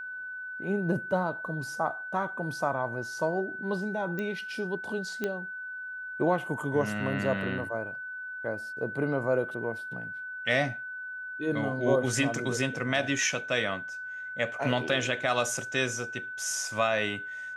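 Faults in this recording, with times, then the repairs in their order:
tone 1500 Hz -36 dBFS
4.19 pop -21 dBFS
5.24 pop -17 dBFS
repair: de-click; notch 1500 Hz, Q 30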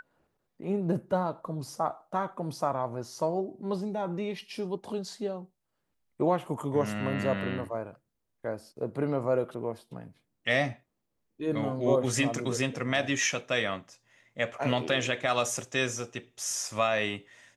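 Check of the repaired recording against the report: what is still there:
none

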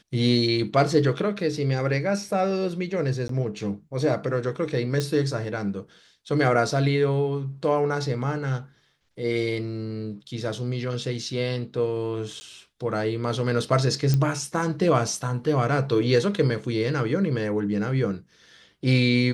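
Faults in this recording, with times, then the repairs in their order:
3.28–3.29 gap 13 ms
5 pop -13 dBFS
12.4–12.41 gap 10 ms
14.14 pop -11 dBFS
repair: de-click; interpolate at 3.28, 13 ms; interpolate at 12.4, 10 ms

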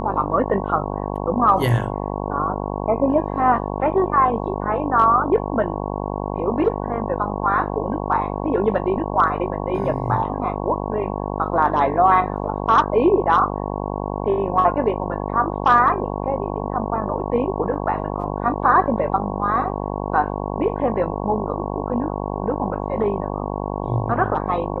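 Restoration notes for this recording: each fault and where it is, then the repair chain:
buzz 50 Hz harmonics 22 -26 dBFS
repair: de-hum 50 Hz, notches 22

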